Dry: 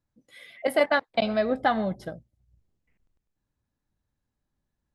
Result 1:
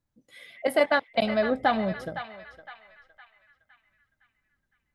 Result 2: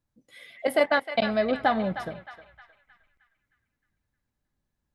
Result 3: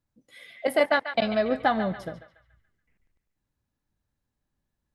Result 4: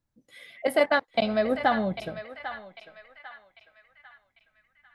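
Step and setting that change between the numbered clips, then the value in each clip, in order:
feedback echo with a band-pass in the loop, delay time: 511, 310, 142, 797 milliseconds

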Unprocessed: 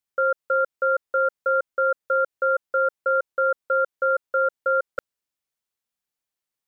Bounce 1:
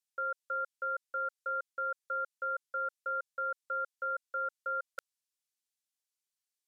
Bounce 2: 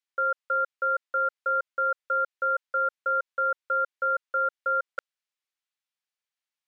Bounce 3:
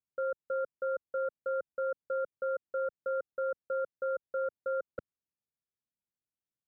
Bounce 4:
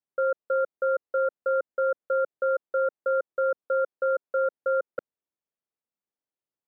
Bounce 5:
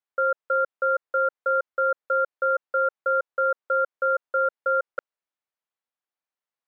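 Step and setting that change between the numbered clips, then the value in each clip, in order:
resonant band-pass, frequency: 7,200, 2,500, 120, 350, 970 Hertz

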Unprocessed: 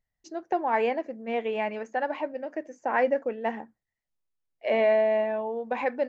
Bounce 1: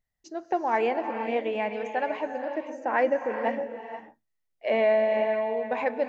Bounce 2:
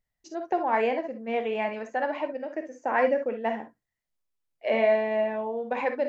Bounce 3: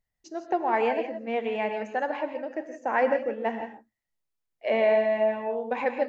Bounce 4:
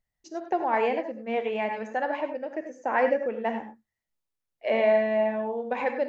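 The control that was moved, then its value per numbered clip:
reverb whose tail is shaped and stops, gate: 520, 80, 190, 120 milliseconds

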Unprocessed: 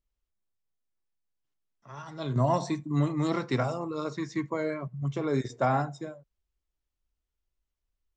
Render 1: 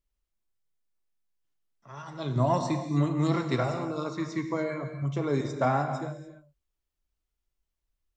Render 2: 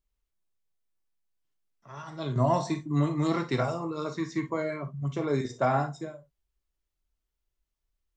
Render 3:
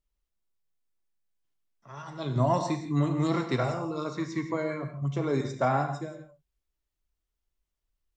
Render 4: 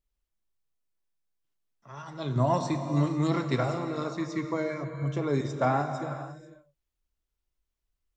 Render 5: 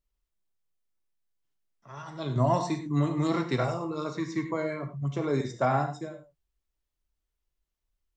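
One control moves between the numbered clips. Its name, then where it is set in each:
reverb whose tail is shaped and stops, gate: 320, 80, 200, 530, 130 milliseconds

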